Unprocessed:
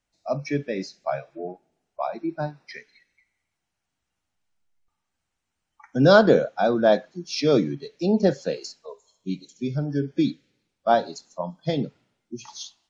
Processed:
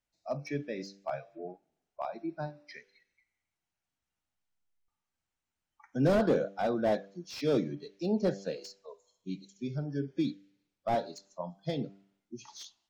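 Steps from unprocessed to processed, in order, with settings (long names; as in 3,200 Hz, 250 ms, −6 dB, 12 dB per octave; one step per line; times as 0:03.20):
hum removal 98.27 Hz, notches 8
slew-rate limiting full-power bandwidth 110 Hz
level −8.5 dB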